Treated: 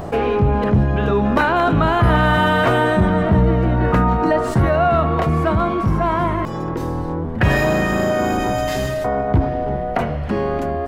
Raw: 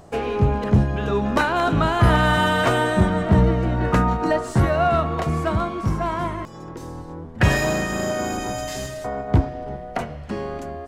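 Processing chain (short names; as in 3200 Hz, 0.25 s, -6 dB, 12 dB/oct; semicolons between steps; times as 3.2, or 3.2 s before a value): bell 7300 Hz -11 dB 1.6 oct; fast leveller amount 50%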